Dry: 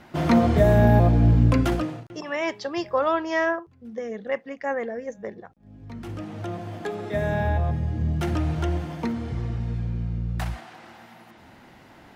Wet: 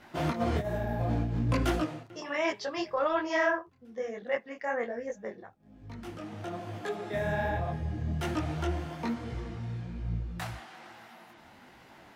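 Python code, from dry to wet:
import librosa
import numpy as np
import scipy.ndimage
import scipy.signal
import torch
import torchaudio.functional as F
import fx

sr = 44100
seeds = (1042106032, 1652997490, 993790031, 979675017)

y = fx.low_shelf(x, sr, hz=370.0, db=-6.0)
y = fx.over_compress(y, sr, threshold_db=-23.0, ratio=-0.5)
y = fx.detune_double(y, sr, cents=41)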